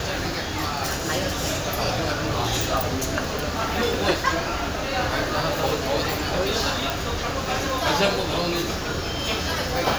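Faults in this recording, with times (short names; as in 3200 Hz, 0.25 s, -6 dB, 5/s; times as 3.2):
6.9 pop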